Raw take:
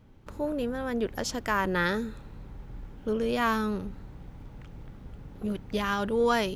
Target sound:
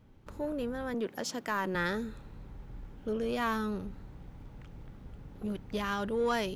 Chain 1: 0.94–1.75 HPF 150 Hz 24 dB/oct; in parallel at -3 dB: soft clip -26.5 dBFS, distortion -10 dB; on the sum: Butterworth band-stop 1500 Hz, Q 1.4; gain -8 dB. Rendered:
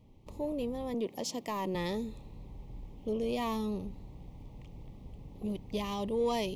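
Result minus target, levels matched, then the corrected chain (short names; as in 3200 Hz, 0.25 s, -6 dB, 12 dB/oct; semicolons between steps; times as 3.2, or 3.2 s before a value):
2000 Hz band -9.5 dB
0.94–1.75 HPF 150 Hz 24 dB/oct; in parallel at -3 dB: soft clip -26.5 dBFS, distortion -10 dB; on the sum: gain -8 dB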